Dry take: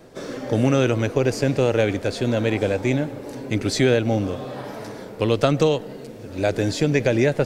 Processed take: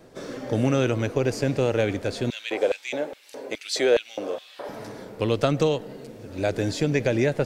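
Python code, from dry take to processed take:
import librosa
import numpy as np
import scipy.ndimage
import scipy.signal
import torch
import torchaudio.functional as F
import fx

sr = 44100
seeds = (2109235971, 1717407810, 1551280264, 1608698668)

y = fx.filter_lfo_highpass(x, sr, shape='square', hz=2.4, low_hz=490.0, high_hz=2900.0, q=1.8, at=(2.3, 4.69))
y = y * 10.0 ** (-3.5 / 20.0)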